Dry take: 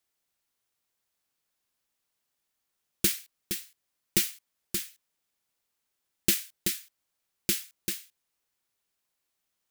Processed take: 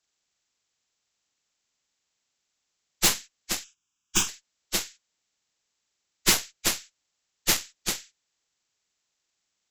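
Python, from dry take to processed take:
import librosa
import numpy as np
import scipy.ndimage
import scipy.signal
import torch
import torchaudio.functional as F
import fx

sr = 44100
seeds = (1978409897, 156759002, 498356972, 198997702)

y = fx.freq_compress(x, sr, knee_hz=1000.0, ratio=1.5)
y = fx.cheby_harmonics(y, sr, harmonics=(8,), levels_db=(-11,), full_scale_db=-8.5)
y = fx.fixed_phaser(y, sr, hz=2900.0, stages=8, at=(3.63, 4.27), fade=0.02)
y = F.gain(torch.from_numpy(y), 1.5).numpy()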